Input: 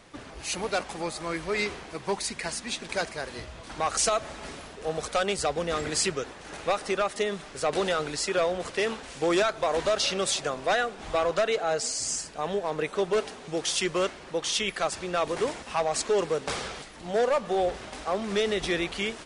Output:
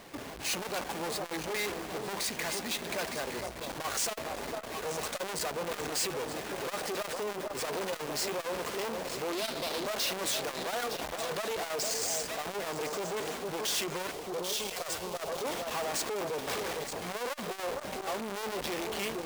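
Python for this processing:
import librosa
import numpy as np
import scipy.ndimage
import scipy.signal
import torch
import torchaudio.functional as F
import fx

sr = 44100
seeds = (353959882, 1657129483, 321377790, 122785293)

y = fx.halfwave_hold(x, sr)
y = fx.graphic_eq_15(y, sr, hz=(250, 1000, 4000), db=(11, -5, 11), at=(9.32, 9.86))
y = y + 10.0 ** (-21.5 / 20.0) * np.pad(y, (int(1161 * sr / 1000.0), 0))[:len(y)]
y = fx.over_compress(y, sr, threshold_db=-26.0, ratio=-0.5, at=(10.93, 11.33))
y = fx.fixed_phaser(y, sr, hz=670.0, stages=4, at=(14.11, 15.44))
y = fx.echo_alternate(y, sr, ms=456, hz=930.0, feedback_pct=65, wet_db=-9)
y = np.clip(10.0 ** (29.0 / 20.0) * y, -1.0, 1.0) / 10.0 ** (29.0 / 20.0)
y = fx.low_shelf(y, sr, hz=130.0, db=-11.0)
y = fx.notch(y, sr, hz=1300.0, q=14.0)
y = fx.transformer_sat(y, sr, knee_hz=880.0)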